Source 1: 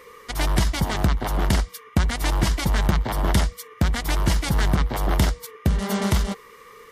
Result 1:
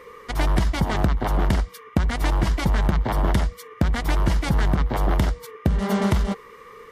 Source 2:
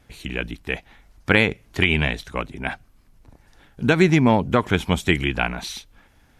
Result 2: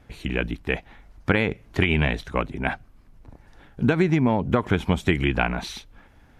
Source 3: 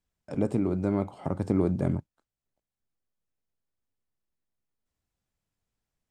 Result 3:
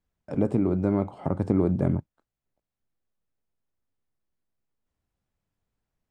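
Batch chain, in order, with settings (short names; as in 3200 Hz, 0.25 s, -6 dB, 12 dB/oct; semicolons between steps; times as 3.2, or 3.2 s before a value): high shelf 3100 Hz -10.5 dB; compressor 10:1, threshold -19 dBFS; gain +3.5 dB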